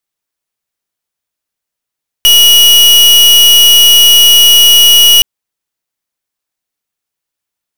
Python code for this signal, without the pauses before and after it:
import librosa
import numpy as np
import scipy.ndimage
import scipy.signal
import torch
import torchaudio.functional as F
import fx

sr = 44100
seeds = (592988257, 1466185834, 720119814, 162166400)

y = fx.pulse(sr, length_s=2.97, hz=2910.0, level_db=-4.0, duty_pct=39)